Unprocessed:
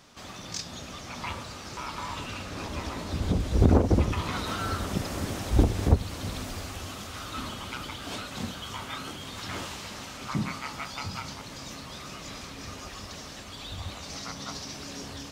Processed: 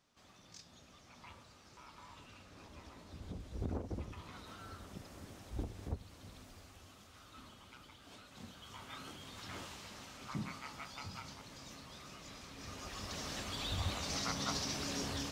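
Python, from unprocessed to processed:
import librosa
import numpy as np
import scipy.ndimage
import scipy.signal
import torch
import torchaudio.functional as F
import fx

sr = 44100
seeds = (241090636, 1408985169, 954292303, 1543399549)

y = fx.gain(x, sr, db=fx.line((8.19, -20.0), (9.03, -11.5), (12.42, -11.5), (13.34, 0.0)))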